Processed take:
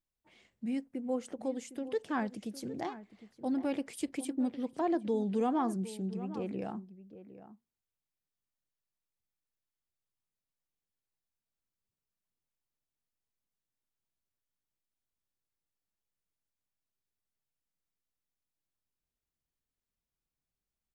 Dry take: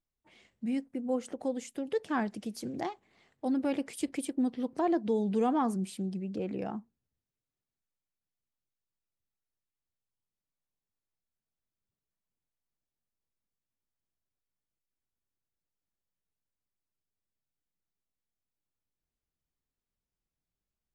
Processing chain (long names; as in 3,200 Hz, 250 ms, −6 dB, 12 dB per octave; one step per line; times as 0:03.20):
slap from a distant wall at 130 metres, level −14 dB
level −2.5 dB